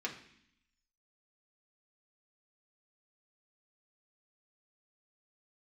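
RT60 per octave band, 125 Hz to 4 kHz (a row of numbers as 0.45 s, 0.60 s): 0.90 s, 1.0 s, 0.60 s, 0.65 s, 0.85 s, 0.85 s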